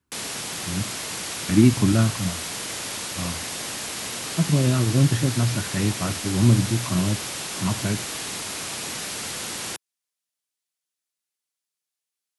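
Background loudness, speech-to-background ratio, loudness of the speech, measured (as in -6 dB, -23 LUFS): -29.0 LUFS, 6.0 dB, -23.0 LUFS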